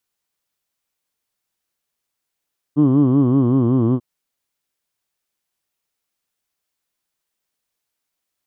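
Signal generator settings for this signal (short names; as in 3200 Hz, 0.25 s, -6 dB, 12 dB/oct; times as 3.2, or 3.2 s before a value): formant vowel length 1.24 s, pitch 141 Hz, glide -3 st, vibrato depth 1.35 st, F1 300 Hz, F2 1100 Hz, F3 3100 Hz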